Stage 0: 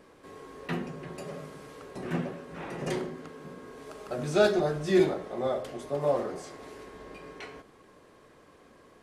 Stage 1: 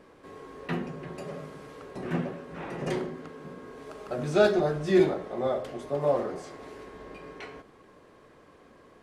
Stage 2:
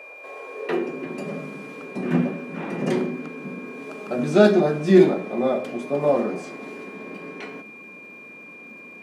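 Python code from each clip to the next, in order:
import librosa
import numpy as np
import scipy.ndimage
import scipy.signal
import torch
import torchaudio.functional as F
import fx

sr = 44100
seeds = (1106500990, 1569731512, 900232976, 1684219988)

y1 = fx.high_shelf(x, sr, hz=4800.0, db=-7.0)
y1 = F.gain(torch.from_numpy(y1), 1.5).numpy()
y2 = y1 + 10.0 ** (-45.0 / 20.0) * np.sin(2.0 * np.pi * 2400.0 * np.arange(len(y1)) / sr)
y2 = fx.dmg_crackle(y2, sr, seeds[0], per_s=450.0, level_db=-60.0)
y2 = fx.filter_sweep_highpass(y2, sr, from_hz=600.0, to_hz=210.0, start_s=0.4, end_s=1.25, q=3.3)
y2 = F.gain(torch.from_numpy(y2), 4.0).numpy()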